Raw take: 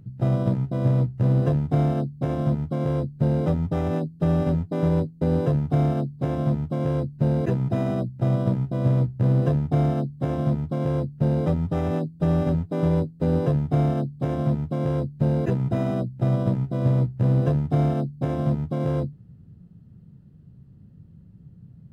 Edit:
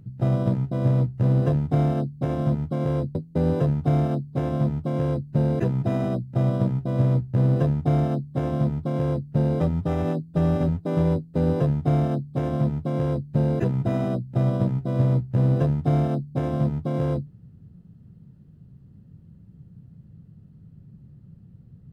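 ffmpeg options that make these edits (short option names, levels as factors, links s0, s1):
-filter_complex "[0:a]asplit=2[s0][s1];[s0]atrim=end=3.152[s2];[s1]atrim=start=5.008[s3];[s2][s3]acrossfade=d=0.004:c1=hsin:c2=hsin"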